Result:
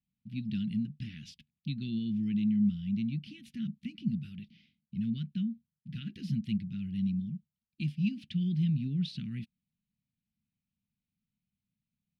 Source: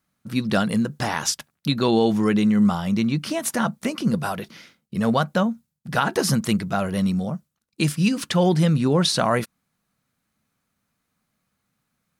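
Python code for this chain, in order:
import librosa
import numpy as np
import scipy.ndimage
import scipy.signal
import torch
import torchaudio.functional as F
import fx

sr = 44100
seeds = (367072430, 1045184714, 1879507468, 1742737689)

y = scipy.signal.sosfilt(scipy.signal.ellip(3, 1.0, 70, [220.0, 2700.0], 'bandstop', fs=sr, output='sos'), x)
y = fx.air_absorb(y, sr, metres=380.0)
y = F.gain(torch.from_numpy(y), -8.5).numpy()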